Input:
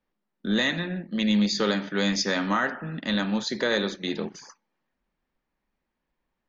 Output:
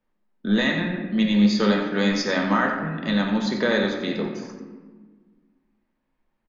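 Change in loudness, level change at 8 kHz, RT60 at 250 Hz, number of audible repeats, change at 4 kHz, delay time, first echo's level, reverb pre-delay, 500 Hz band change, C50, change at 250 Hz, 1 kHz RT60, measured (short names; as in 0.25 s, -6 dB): +3.5 dB, n/a, 2.1 s, 1, -0.5 dB, 90 ms, -10.5 dB, 3 ms, +4.0 dB, 5.0 dB, +5.0 dB, 1.3 s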